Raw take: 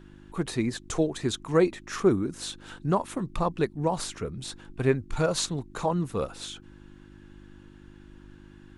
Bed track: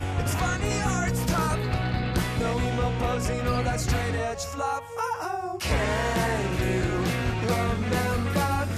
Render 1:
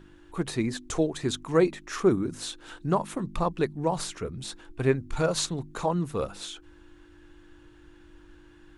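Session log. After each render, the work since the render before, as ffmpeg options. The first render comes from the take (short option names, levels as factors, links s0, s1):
-af "bandreject=f=50:t=h:w=4,bandreject=f=100:t=h:w=4,bandreject=f=150:t=h:w=4,bandreject=f=200:t=h:w=4,bandreject=f=250:t=h:w=4"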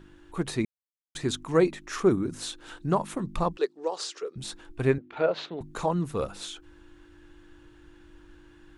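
-filter_complex "[0:a]asettb=1/sr,asplit=3[s0][s1][s2];[s0]atrim=end=3.574[s3];[s1]atrim=start=3.57:end=4.36,asetpts=PTS-STARTPTS,afade=t=in:d=0.004:c=qsin,afade=t=out:st=0.786:d=0.004:c=qsin,highpass=f=410:w=0.5412,highpass=f=410:w=1.3066,equalizer=f=420:t=q:w=4:g=5,equalizer=f=660:t=q:w=4:g=-7,equalizer=f=950:t=q:w=4:g=-6,equalizer=f=1500:t=q:w=4:g=-4,equalizer=f=2200:t=q:w=4:g=-7,equalizer=f=4800:t=q:w=4:g=5,lowpass=f=7700:w=0.5412,lowpass=f=7700:w=1.3066[s4];[s2]atrim=start=4.356[s5];[s3][s4]acrossfade=d=0.004:c1=hsin:c2=qsin[s6];[s6][s5]acrossfade=d=0.004:c1=qsin:c2=hsin,asettb=1/sr,asplit=3[s7][s8][s9];[s7]atrim=end=4.984[s10];[s8]atrim=start=4.98:end=5.61,asetpts=PTS-STARTPTS,afade=t=in:d=0.004:c=qsin,afade=t=out:st=0.626:d=0.004:c=qsin,highpass=320,equalizer=f=430:t=q:w=4:g=3,equalizer=f=630:t=q:w=4:g=4,equalizer=f=1100:t=q:w=4:g=-5,lowpass=f=3300:w=0.5412,lowpass=f=3300:w=1.3066[s11];[s9]atrim=start=5.606[s12];[s10][s11]acrossfade=d=0.004:c1=hsin:c2=qsin[s13];[s13][s12]acrossfade=d=0.004:c1=qsin:c2=hsin,asplit=3[s14][s15][s16];[s14]atrim=end=0.65,asetpts=PTS-STARTPTS,afade=t=out:st=0.646:d=0.004:c=hsin[s17];[s15]atrim=start=0.65:end=1.15,asetpts=PTS-STARTPTS,volume=0[s18];[s16]atrim=start=1.15,asetpts=PTS-STARTPTS,afade=t=in:d=0.004:c=hsin[s19];[s17][s18][s19]concat=n=3:v=0:a=1"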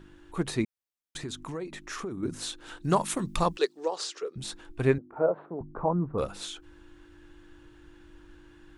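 -filter_complex "[0:a]asettb=1/sr,asplit=3[s0][s1][s2];[s0]atrim=end=0.644[s3];[s1]atrim=start=0.64:end=2.23,asetpts=PTS-STARTPTS,afade=t=in:d=0.004:c=qsin,afade=t=out:st=1.586:d=0.004:c=qsin,acompressor=threshold=0.0224:ratio=6:attack=3.2:release=140:knee=1:detection=peak[s4];[s2]atrim=start=2.226[s5];[s3][s4]acrossfade=d=0.004:c1=hsin:c2=qsin[s6];[s6][s5]acrossfade=d=0.004:c1=qsin:c2=hsin,asettb=1/sr,asplit=3[s7][s8][s9];[s7]atrim=end=2.844[s10];[s8]atrim=start=2.84:end=3.86,asetpts=PTS-STARTPTS,afade=t=in:d=0.004:c=qsin,afade=t=out:st=1.016:d=0.004:c=qsin,highshelf=f=2400:g=11.5[s11];[s9]atrim=start=3.856[s12];[s10][s11]acrossfade=d=0.004:c1=hsin:c2=qsin[s13];[s13][s12]acrossfade=d=0.004:c1=qsin:c2=hsin,asettb=1/sr,asplit=3[s14][s15][s16];[s14]atrim=end=4.984[s17];[s15]atrim=start=4.98:end=6.18,asetpts=PTS-STARTPTS,afade=t=in:d=0.004:c=qsin,afade=t=out:st=1.196:d=0.004:c=qsin,lowpass=f=1200:w=0.5412,lowpass=f=1200:w=1.3066[s18];[s16]atrim=start=6.176[s19];[s17][s18]acrossfade=d=0.004:c1=hsin:c2=qsin[s20];[s20][s19]acrossfade=d=0.004:c1=qsin:c2=hsin"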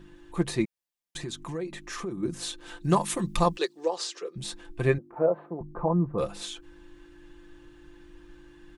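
-af "bandreject=f=1400:w=12,aecho=1:1:5.8:0.54"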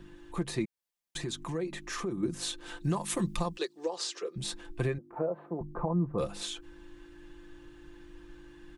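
-filter_complex "[0:a]alimiter=limit=0.1:level=0:latency=1:release=273,acrossover=split=340|3000[s0][s1][s2];[s1]acompressor=threshold=0.0224:ratio=2[s3];[s0][s3][s2]amix=inputs=3:normalize=0"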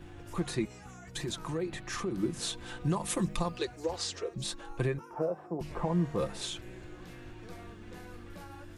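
-filter_complex "[1:a]volume=0.0668[s0];[0:a][s0]amix=inputs=2:normalize=0"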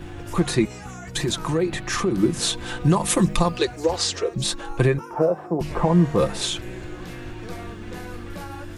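-af "volume=3.98"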